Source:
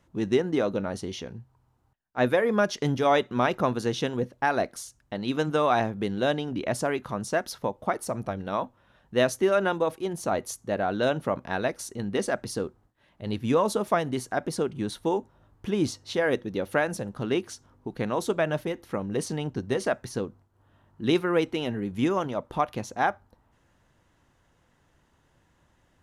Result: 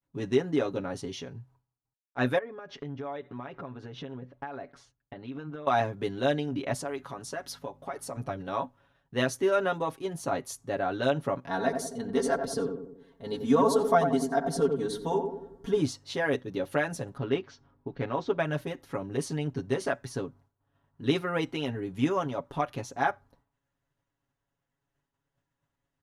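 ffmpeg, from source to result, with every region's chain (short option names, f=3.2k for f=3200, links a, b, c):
-filter_complex "[0:a]asettb=1/sr,asplit=3[a][b][c];[a]atrim=end=2.384[d];[b]atrim=start=2.38:end=5.67,asetpts=PTS-STARTPTS,afade=t=in:d=0.004:c=qsin,afade=t=out:st=3.286:d=0.004:c=qsin,lowpass=2.5k,acompressor=threshold=-33dB:ratio=10:attack=3.2:release=140:knee=1:detection=peak[e];[c]atrim=start=5.666[f];[d][e]acrossfade=d=0.004:c1=hsin:c2=qsin[g];[g][f]acrossfade=d=0.004:c1=qsin:c2=hsin,asettb=1/sr,asplit=3[h][i][j];[h]atrim=end=6.744[k];[i]atrim=start=6.74:end=8.17,asetpts=PTS-STARTPTS,afade=t=in:d=0.004:c=qsin,afade=t=out:st=1.426:d=0.004:c=qsin,acompressor=threshold=-27dB:ratio=6:attack=3.2:release=140:knee=1:detection=peak,aeval=exprs='val(0)+0.00501*(sin(2*PI*50*n/s)+sin(2*PI*2*50*n/s)/2+sin(2*PI*3*50*n/s)/3+sin(2*PI*4*50*n/s)/4+sin(2*PI*5*50*n/s)/5)':c=same,highpass=f=270:p=1[l];[j]atrim=start=8.166[m];[k][l]acrossfade=d=0.004:c1=hsin:c2=qsin[n];[n][m]acrossfade=d=0.004:c1=qsin:c2=hsin,asettb=1/sr,asplit=3[o][p][q];[o]atrim=end=11.484[r];[p]atrim=start=11.48:end=15.8,asetpts=PTS-STARTPTS,afade=t=in:d=0.004:c=qsin,afade=t=out:st=4.316:d=0.004:c=qsin,equalizer=f=2.5k:t=o:w=0.44:g=-11,aecho=1:1:4.4:0.8,atrim=end_sample=190512,asplit=2[s][t];[t]adelay=90,lowpass=f=940:p=1,volume=-4.5dB,asplit=2[u][v];[v]adelay=90,lowpass=f=940:p=1,volume=0.54,asplit=2[w][x];[x]adelay=90,lowpass=f=940:p=1,volume=0.54,asplit=2[y][z];[z]adelay=90,lowpass=f=940:p=1,volume=0.54,asplit=2[aa][ab];[ab]adelay=90,lowpass=f=940:p=1,volume=0.54,asplit=2[ac][ad];[ad]adelay=90,lowpass=f=940:p=1,volume=0.54,asplit=2[ae][af];[af]adelay=90,lowpass=f=940:p=1,volume=0.54[ag];[s][u][w][y][aa][ac][ae][ag]amix=inputs=8:normalize=0,atrim=end_sample=190512[ah];[q]atrim=start=15.796[ai];[r][ah]acrossfade=d=0.004:c1=hsin:c2=qsin[aj];[aj][ai]acrossfade=d=0.004:c1=qsin:c2=hsin,asettb=1/sr,asplit=3[ak][al][am];[ak]atrim=end=17.174[an];[al]atrim=start=17.17:end=18.39,asetpts=PTS-STARTPTS,afade=t=in:d=0.004:c=qsin,afade=t=out:st=1.216:d=0.004:c=qsin,lowpass=f=5.8k:w=0.5412,lowpass=f=5.8k:w=1.3066,adynamicsmooth=sensitivity=1:basefreq=4.4k[ao];[am]atrim=start=18.386[ap];[an][ao]acrossfade=d=0.004:c1=hsin:c2=qsin[aq];[aq][ap]acrossfade=d=0.004:c1=qsin:c2=hsin,agate=range=-33dB:threshold=-54dB:ratio=3:detection=peak,highshelf=f=11k:g=-3.5,aecho=1:1:7.2:0.83,volume=-4.5dB"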